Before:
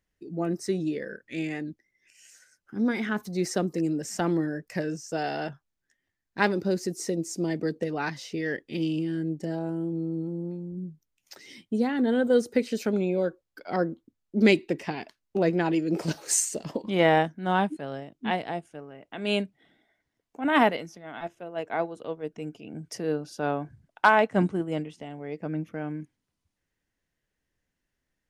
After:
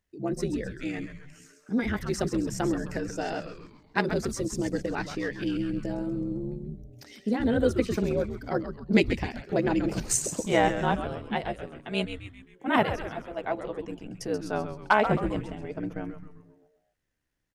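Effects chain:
echo with shifted repeats 213 ms, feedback 49%, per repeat −150 Hz, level −9 dB
time stretch by overlap-add 0.62×, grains 29 ms

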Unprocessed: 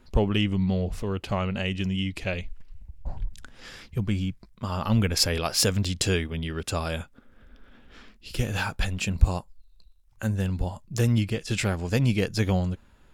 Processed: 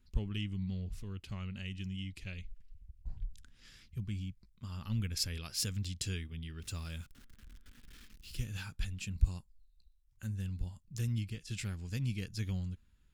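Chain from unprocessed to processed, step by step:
0:06.62–0:08.44: converter with a step at zero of −39 dBFS
guitar amp tone stack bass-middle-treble 6-0-2
level +3 dB

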